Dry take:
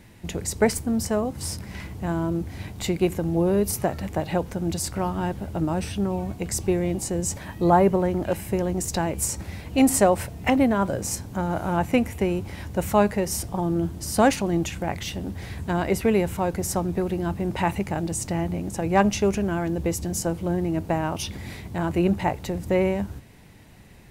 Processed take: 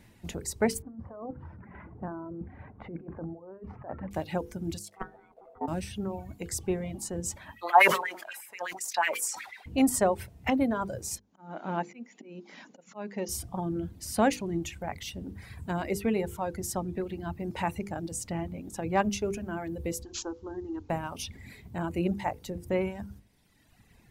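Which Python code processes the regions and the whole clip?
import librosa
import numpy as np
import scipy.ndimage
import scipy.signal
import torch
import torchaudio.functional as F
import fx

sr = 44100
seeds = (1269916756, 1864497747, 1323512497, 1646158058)

y = fx.chain(x, sr, fx.lowpass(hz=1500.0, slope=24),
    fx.low_shelf(hz=170.0, db=-9.0),
    fx.over_compress(threshold_db=-31.0, ratio=-1.0), at=(0.82, 4.11))
y = fx.chain(y, sr, fx.level_steps(step_db=12),
    fx.ring_mod(carrier_hz=580.0),
    fx.band_widen(depth_pct=70), at=(4.79, 5.68))
y = fx.chain(y, sr, fx.filter_lfo_highpass(shape='sine', hz=8.2, low_hz=740.0, high_hz=2300.0, q=3.4),
    fx.sustainer(db_per_s=51.0), at=(7.56, 9.66))
y = fx.chain(y, sr, fx.auto_swell(attack_ms=340.0),
    fx.brickwall_bandpass(low_hz=160.0, high_hz=7300.0), at=(11.18, 13.29))
y = fx.chain(y, sr, fx.fixed_phaser(hz=620.0, stages=6),
    fx.resample_bad(factor=3, down='none', up='filtered'), at=(20.03, 20.9))
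y = fx.dereverb_blind(y, sr, rt60_s=1.6)
y = fx.peak_eq(y, sr, hz=230.0, db=2.5, octaves=0.41)
y = fx.hum_notches(y, sr, base_hz=50, count=10)
y = F.gain(torch.from_numpy(y), -6.0).numpy()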